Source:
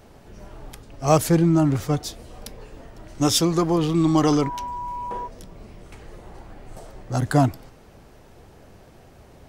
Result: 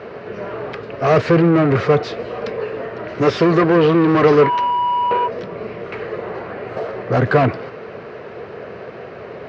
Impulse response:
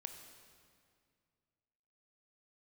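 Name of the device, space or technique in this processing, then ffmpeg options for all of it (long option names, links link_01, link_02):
overdrive pedal into a guitar cabinet: -filter_complex "[0:a]asplit=2[link_01][link_02];[link_02]highpass=frequency=720:poles=1,volume=29dB,asoftclip=type=tanh:threshold=-5dB[link_03];[link_01][link_03]amix=inputs=2:normalize=0,lowpass=frequency=1600:poles=1,volume=-6dB,highpass=100,equalizer=frequency=110:width_type=q:width=4:gain=3,equalizer=frequency=290:width_type=q:width=4:gain=-7,equalizer=frequency=440:width_type=q:width=4:gain=7,equalizer=frequency=840:width_type=q:width=4:gain=-10,equalizer=frequency=3400:width_type=q:width=4:gain=-8,lowpass=frequency=3900:width=0.5412,lowpass=frequency=3900:width=1.3066,volume=1dB"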